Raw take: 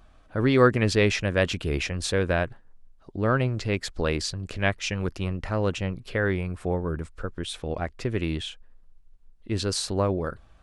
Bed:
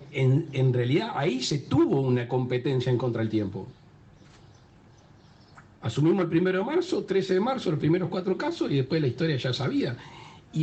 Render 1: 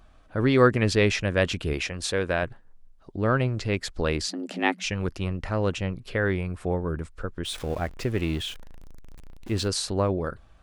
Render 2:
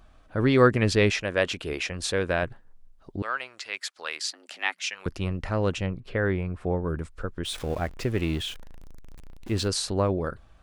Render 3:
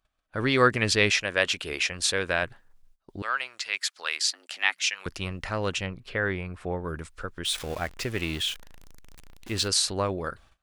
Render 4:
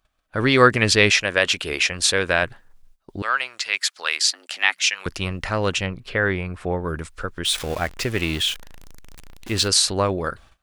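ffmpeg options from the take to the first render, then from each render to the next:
-filter_complex "[0:a]asettb=1/sr,asplit=3[s0][s1][s2];[s0]atrim=end=1.734[s3];[s1]atrim=start=1.73:end=2.43,asetpts=PTS-STARTPTS,afade=t=in:d=0.004:c=qsin,afade=t=out:st=0.696:d=0.004:c=qsin,lowshelf=f=220:g=-7[s4];[s2]atrim=start=2.426[s5];[s3][s4]acrossfade=d=0.004:c1=hsin:c2=qsin[s6];[s6][s5]acrossfade=d=0.004:c1=qsin:c2=hsin,asettb=1/sr,asplit=3[s7][s8][s9];[s7]atrim=end=4.284[s10];[s8]atrim=start=4.28:end=4.84,asetpts=PTS-STARTPTS,afade=t=in:d=0.004:c=qsin,afade=t=out:st=0.556:d=0.004:c=qsin,afreqshift=170[s11];[s9]atrim=start=4.836[s12];[s10][s11]acrossfade=d=0.004:c1=hsin:c2=qsin[s13];[s13][s12]acrossfade=d=0.004:c1=qsin:c2=hsin,asettb=1/sr,asplit=3[s14][s15][s16];[s14]atrim=end=7.454[s17];[s15]atrim=start=7.45:end=9.68,asetpts=PTS-STARTPTS,afade=t=in:d=0.004:c=qsin,afade=t=out:st=2.226:d=0.004:c=qsin,aeval=exprs='val(0)+0.5*0.0119*sgn(val(0))':c=same[s18];[s16]atrim=start=9.676[s19];[s17][s18]acrossfade=d=0.004:c1=hsin:c2=qsin[s20];[s20][s19]acrossfade=d=0.004:c1=qsin:c2=hsin"
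-filter_complex "[0:a]asettb=1/sr,asplit=3[s0][s1][s2];[s0]atrim=end=1.104[s3];[s1]atrim=start=1.1:end=1.9,asetpts=PTS-STARTPTS,afade=t=in:d=0.004:c=qsin,afade=t=out:st=0.796:d=0.004:c=qsin,bass=f=250:g=-10,treble=f=4000:g=-1[s4];[s2]atrim=start=1.896[s5];[s3][s4]acrossfade=d=0.004:c1=hsin:c2=qsin[s6];[s6][s5]acrossfade=d=0.004:c1=qsin:c2=hsin,asettb=1/sr,asplit=3[s7][s8][s9];[s7]atrim=end=3.224[s10];[s8]atrim=start=3.22:end=5.06,asetpts=PTS-STARTPTS,afade=t=in:d=0.004:c=qsin,afade=t=out:st=1.836:d=0.004:c=qsin,highpass=1200[s11];[s9]atrim=start=5.056[s12];[s10][s11]acrossfade=d=0.004:c1=hsin:c2=qsin[s13];[s13][s12]acrossfade=d=0.004:c1=qsin:c2=hsin,asettb=1/sr,asplit=3[s14][s15][s16];[s14]atrim=end=5.864[s17];[s15]atrim=start=5.86:end=6.84,asetpts=PTS-STARTPTS,afade=t=in:d=0.004:c=qsin,afade=t=out:st=0.976:d=0.004:c=qsin,lowpass=f=2100:p=1[s18];[s16]atrim=start=6.836[s19];[s17][s18]acrossfade=d=0.004:c1=hsin:c2=qsin[s20];[s20][s19]acrossfade=d=0.004:c1=qsin:c2=hsin"
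-af "agate=range=0.0794:threshold=0.00355:ratio=16:detection=peak,tiltshelf=f=970:g=-6"
-af "volume=2.11,alimiter=limit=0.891:level=0:latency=1"

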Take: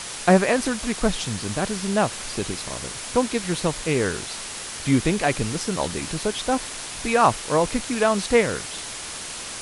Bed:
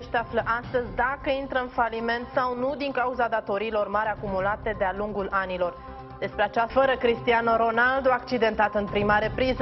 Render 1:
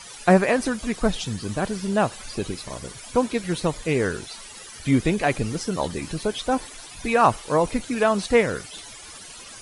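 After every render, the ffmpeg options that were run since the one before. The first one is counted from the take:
-af "afftdn=nr=14:nf=-34"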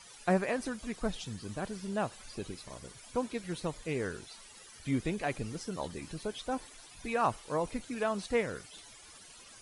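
-af "volume=0.251"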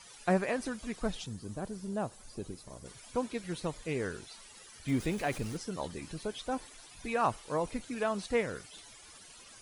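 -filter_complex "[0:a]asettb=1/sr,asplit=3[s0][s1][s2];[s0]atrim=end=1.264[s3];[s1]atrim=start=1.26:end=2.86,asetpts=PTS-STARTPTS,afade=t=in:d=0.004:c=qsin,afade=t=out:st=1.596:d=0.004:c=qsin,equalizer=f=2500:w=0.58:g=-10[s4];[s2]atrim=start=2.856[s5];[s3][s4]acrossfade=d=0.004:c1=hsin:c2=qsin[s6];[s6][s5]acrossfade=d=0.004:c1=qsin:c2=hsin,asettb=1/sr,asplit=3[s7][s8][s9];[s7]atrim=end=4.884[s10];[s8]atrim=start=4.88:end=5.57,asetpts=PTS-STARTPTS,afade=t=in:d=0.004:c=qsin,afade=t=out:st=0.686:d=0.004:c=qsin,aeval=exprs='val(0)+0.5*0.00708*sgn(val(0))':c=same[s11];[s9]atrim=start=5.566[s12];[s10][s11]acrossfade=d=0.004:c1=hsin:c2=qsin[s13];[s13][s12]acrossfade=d=0.004:c1=qsin:c2=hsin"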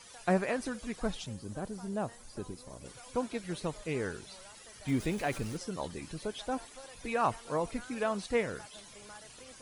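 -filter_complex "[1:a]volume=0.0299[s0];[0:a][s0]amix=inputs=2:normalize=0"

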